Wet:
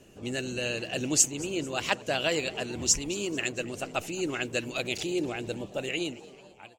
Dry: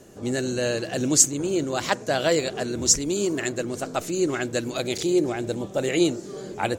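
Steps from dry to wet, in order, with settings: fade out at the end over 1.27 s; bass shelf 150 Hz +5.5 dB; on a send: frequency-shifting echo 222 ms, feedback 55%, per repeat +120 Hz, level -20.5 dB; on the sum: harmonic-percussive split harmonic -5 dB; peaking EQ 2.7 kHz +13 dB 0.43 oct; trim -5.5 dB

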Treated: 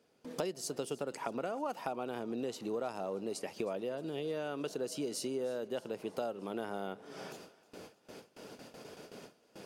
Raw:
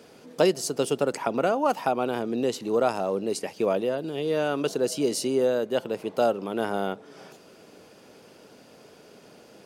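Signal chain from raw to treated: gate with hold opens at -40 dBFS; compression 4:1, threshold -38 dBFS, peak gain reduction 18.5 dB; thinning echo 312 ms, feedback 62%, level -20.5 dB; trim +1 dB

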